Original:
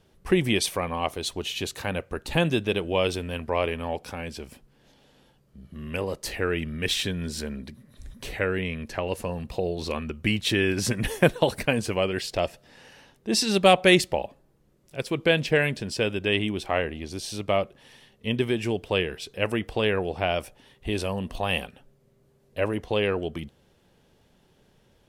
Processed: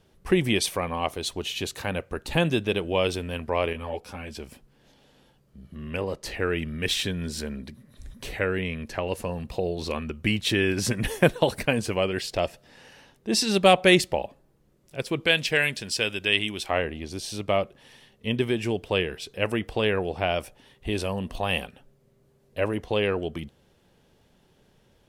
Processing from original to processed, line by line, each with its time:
3.73–4.35 ensemble effect
5.75–6.4 high shelf 7900 Hz -10 dB
15.26–16.7 tilt shelf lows -6.5 dB, about 1300 Hz

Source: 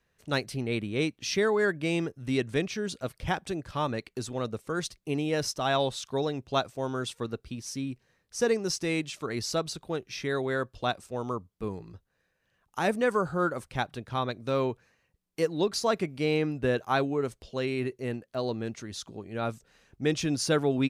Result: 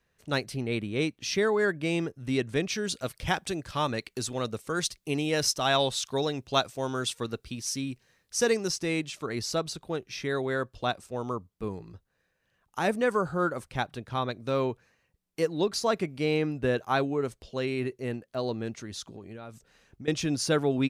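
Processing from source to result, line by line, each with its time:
2.68–8.68 high shelf 2000 Hz +7.5 dB
19.07–20.08 compressor 16:1, threshold -38 dBFS

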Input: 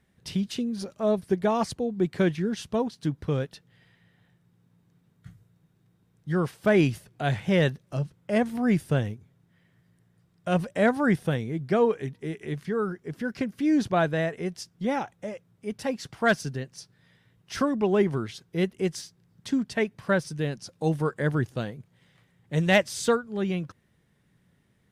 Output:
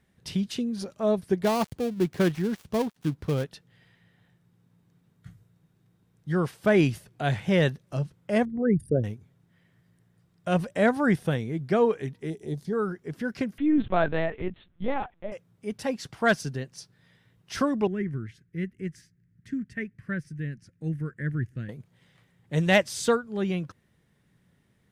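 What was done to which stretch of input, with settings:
1.43–3.44 switching dead time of 0.17 ms
8.45–9.04 formant sharpening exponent 3
12.3–12.73 band shelf 1800 Hz -14 dB
13.58–15.32 LPC vocoder at 8 kHz pitch kept
17.87–21.69 EQ curve 110 Hz 0 dB, 310 Hz -7 dB, 890 Hz -28 dB, 1800 Hz -2 dB, 3700 Hz -21 dB, 7300 Hz -16 dB

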